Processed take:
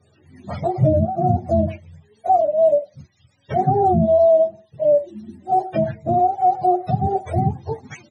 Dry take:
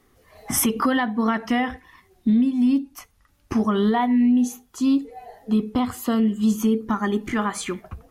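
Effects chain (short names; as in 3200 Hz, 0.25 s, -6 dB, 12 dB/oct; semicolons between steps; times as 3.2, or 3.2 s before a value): spectrum mirrored in octaves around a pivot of 400 Hz; downsampling 22050 Hz; gain +4.5 dB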